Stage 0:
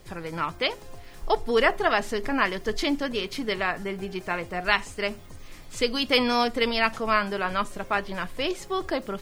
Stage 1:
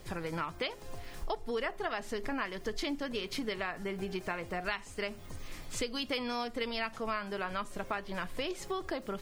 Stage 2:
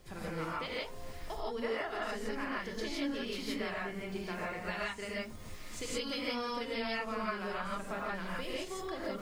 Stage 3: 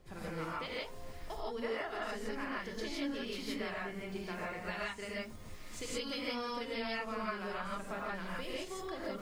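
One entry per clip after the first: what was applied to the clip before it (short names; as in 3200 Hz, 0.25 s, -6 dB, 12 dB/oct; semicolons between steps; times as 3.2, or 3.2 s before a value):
compressor 5:1, threshold -33 dBFS, peak gain reduction 16 dB
non-linear reverb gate 0.19 s rising, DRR -6 dB; gain -8 dB
mismatched tape noise reduction decoder only; gain -2 dB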